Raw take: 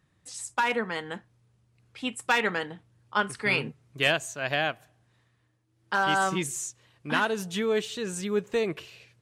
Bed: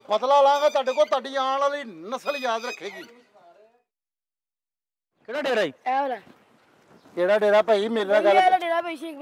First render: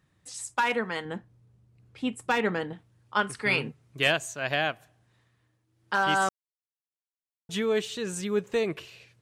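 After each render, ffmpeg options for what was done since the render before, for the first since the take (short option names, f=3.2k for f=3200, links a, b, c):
-filter_complex "[0:a]asettb=1/sr,asplit=3[a][b][c];[a]atrim=end=1.054[d];[b]atrim=start=1.05:end=2.73,asetpts=PTS-STARTPTS,afade=t=in:d=0.004:c=qsin,afade=t=out:st=1.676:d=0.004:c=qsin,tiltshelf=f=710:g=5.5[e];[c]atrim=start=2.726[f];[d][e]acrossfade=d=0.004:c1=hsin:c2=qsin[g];[g][f]acrossfade=d=0.004:c1=qsin:c2=hsin,asplit=3[h][i][j];[h]atrim=end=6.29,asetpts=PTS-STARTPTS,afade=t=out:st=6.286:d=0.004:c=hsin[k];[i]atrim=start=6.29:end=7.49,asetpts=PTS-STARTPTS,volume=0[l];[j]atrim=start=7.49,asetpts=PTS-STARTPTS,afade=t=in:d=0.004:c=hsin[m];[k][l][m]concat=n=3:v=0:a=1"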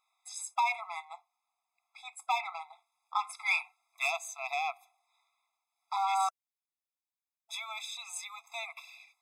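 -af "asoftclip=type=tanh:threshold=-17.5dB,afftfilt=real='re*eq(mod(floor(b*sr/1024/670),2),1)':imag='im*eq(mod(floor(b*sr/1024/670),2),1)':win_size=1024:overlap=0.75"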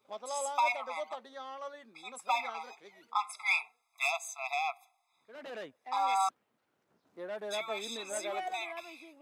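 -filter_complex "[1:a]volume=-20dB[a];[0:a][a]amix=inputs=2:normalize=0"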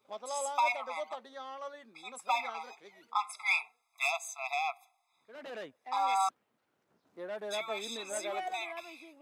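-af anull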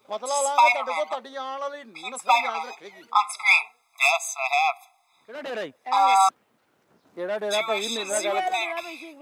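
-af "volume=11.5dB"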